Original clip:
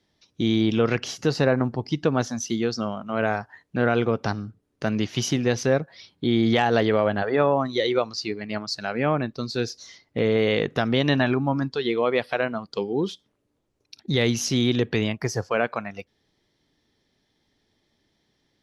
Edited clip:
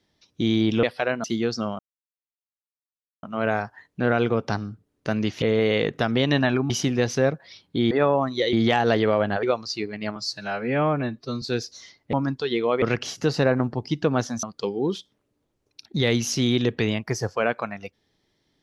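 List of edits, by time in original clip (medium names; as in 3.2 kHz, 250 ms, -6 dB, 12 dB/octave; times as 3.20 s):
0.83–2.44 s: swap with 12.16–12.57 s
2.99 s: insert silence 1.44 s
7.29–7.91 s: move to 6.39 s
8.64–9.48 s: stretch 1.5×
10.19–11.47 s: move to 5.18 s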